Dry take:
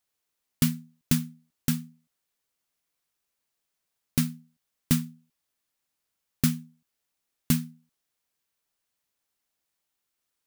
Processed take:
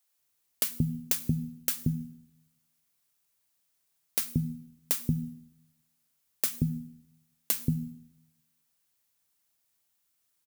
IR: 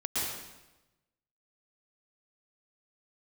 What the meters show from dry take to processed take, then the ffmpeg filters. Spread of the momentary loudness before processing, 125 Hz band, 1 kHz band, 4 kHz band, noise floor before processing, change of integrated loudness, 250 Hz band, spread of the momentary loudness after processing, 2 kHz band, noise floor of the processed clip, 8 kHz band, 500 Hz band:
13 LU, -1.0 dB, -3.0 dB, -2.5 dB, -82 dBFS, -2.0 dB, -4.5 dB, 12 LU, -4.0 dB, -76 dBFS, +0.5 dB, +0.5 dB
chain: -filter_complex "[0:a]lowshelf=f=200:g=6.5,bandreject=f=60:t=h:w=6,bandreject=f=120:t=h:w=6,bandreject=f=180:t=h:w=6,bandreject=f=240:t=h:w=6,acompressor=threshold=-22dB:ratio=6,highpass=55,highshelf=f=6.1k:g=8,acrossover=split=410[a][b];[a]adelay=180[c];[c][b]amix=inputs=2:normalize=0,asplit=2[d][e];[1:a]atrim=start_sample=2205,asetrate=52920,aresample=44100,highshelf=f=9.9k:g=8.5[f];[e][f]afir=irnorm=-1:irlink=0,volume=-26.5dB[g];[d][g]amix=inputs=2:normalize=0"

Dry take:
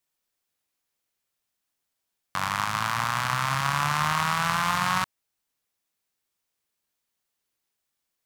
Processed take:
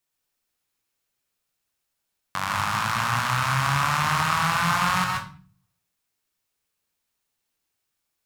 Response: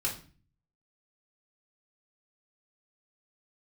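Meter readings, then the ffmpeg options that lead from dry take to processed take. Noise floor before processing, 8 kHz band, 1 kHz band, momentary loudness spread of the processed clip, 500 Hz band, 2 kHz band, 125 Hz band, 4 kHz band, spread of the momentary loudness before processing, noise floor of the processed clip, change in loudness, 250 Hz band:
-82 dBFS, +2.0 dB, +2.0 dB, 9 LU, +2.0 dB, +2.5 dB, +4.5 dB, +2.0 dB, 5 LU, -80 dBFS, +2.5 dB, +3.5 dB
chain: -filter_complex "[0:a]asplit=2[a][b];[1:a]atrim=start_sample=2205,adelay=126[c];[b][c]afir=irnorm=-1:irlink=0,volume=-6dB[d];[a][d]amix=inputs=2:normalize=0"

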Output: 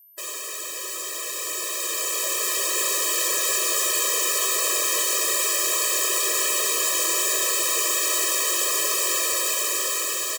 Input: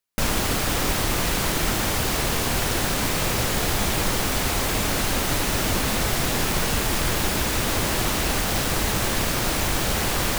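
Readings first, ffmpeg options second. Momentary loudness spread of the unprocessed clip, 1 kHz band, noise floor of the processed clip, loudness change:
0 LU, -4.5 dB, -33 dBFS, +1.5 dB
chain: -filter_complex "[0:a]highpass=f=320:p=1,aeval=exprs='val(0)+0.00355*sin(2*PI*13000*n/s)':c=same,asplit=2[a][b];[b]aecho=0:1:230|460|690|920|1150|1380:0.224|0.128|0.0727|0.0415|0.0236|0.0135[c];[a][c]amix=inputs=2:normalize=0,flanger=delay=18.5:depth=2.6:speed=2.6,aeval=exprs='0.0316*(abs(mod(val(0)/0.0316+3,4)-2)-1)':c=same,equalizer=f=7.4k:t=o:w=0.28:g=10,dynaudnorm=f=370:g=11:m=10dB,afftfilt=real='re*eq(mod(floor(b*sr/1024/330),2),1)':imag='im*eq(mod(floor(b*sr/1024/330),2),1)':win_size=1024:overlap=0.75,volume=3.5dB"

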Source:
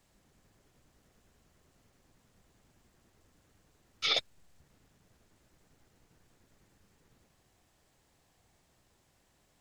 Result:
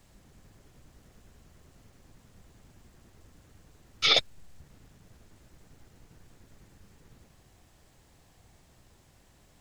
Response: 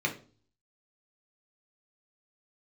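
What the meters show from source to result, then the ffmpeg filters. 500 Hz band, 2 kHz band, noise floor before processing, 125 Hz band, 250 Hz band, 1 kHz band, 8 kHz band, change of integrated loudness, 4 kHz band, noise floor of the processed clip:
+7.5 dB, +7.0 dB, -71 dBFS, +12.0 dB, +9.5 dB, +7.0 dB, +7.0 dB, +7.0 dB, +7.0 dB, -61 dBFS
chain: -af "lowshelf=f=180:g=7,volume=7dB"

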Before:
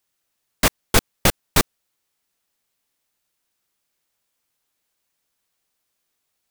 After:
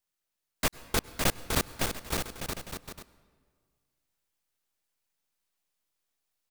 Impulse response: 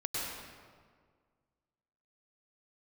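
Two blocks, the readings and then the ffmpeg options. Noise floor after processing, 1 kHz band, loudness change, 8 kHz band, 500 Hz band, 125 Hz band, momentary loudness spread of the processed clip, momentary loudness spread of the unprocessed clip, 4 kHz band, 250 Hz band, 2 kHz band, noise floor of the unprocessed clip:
-85 dBFS, -8.5 dB, -11.0 dB, -8.5 dB, -8.5 dB, -8.5 dB, 14 LU, 3 LU, -8.5 dB, -8.5 dB, -8.5 dB, -76 dBFS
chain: -filter_complex "[0:a]aeval=exprs='if(lt(val(0),0),0.447*val(0),val(0))':c=same,aecho=1:1:560|924|1161|1314|1414:0.631|0.398|0.251|0.158|0.1,asplit=2[a][b];[1:a]atrim=start_sample=2205[c];[b][c]afir=irnorm=-1:irlink=0,volume=-21.5dB[d];[a][d]amix=inputs=2:normalize=0,volume=-8.5dB"

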